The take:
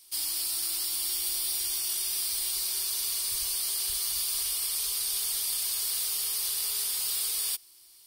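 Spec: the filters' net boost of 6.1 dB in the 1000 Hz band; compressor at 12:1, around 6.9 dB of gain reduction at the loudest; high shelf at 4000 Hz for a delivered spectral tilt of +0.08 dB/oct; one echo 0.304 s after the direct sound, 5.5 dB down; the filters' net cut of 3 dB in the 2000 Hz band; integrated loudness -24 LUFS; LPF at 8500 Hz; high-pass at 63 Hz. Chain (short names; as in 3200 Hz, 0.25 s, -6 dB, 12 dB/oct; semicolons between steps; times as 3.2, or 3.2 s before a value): HPF 63 Hz; LPF 8500 Hz; bell 1000 Hz +9 dB; bell 2000 Hz -3.5 dB; high shelf 4000 Hz -8.5 dB; compressor 12:1, threshold -43 dBFS; echo 0.304 s -5.5 dB; gain +19 dB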